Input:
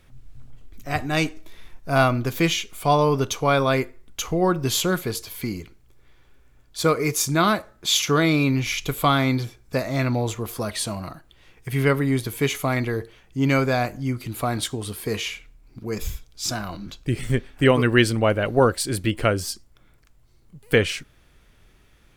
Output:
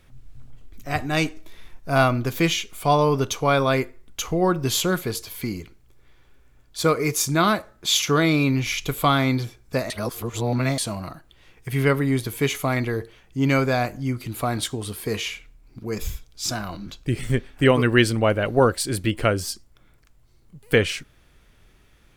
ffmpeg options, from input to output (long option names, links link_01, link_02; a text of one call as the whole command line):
ffmpeg -i in.wav -filter_complex "[0:a]asplit=3[link_01][link_02][link_03];[link_01]atrim=end=9.902[link_04];[link_02]atrim=start=9.898:end=10.782,asetpts=PTS-STARTPTS,areverse[link_05];[link_03]atrim=start=10.778[link_06];[link_04][link_05]acrossfade=duration=0.004:curve1=hsin:curve2=hsin[link_07];[link_07][link_06]acrossfade=duration=0.004:curve1=hsin:curve2=hsin" out.wav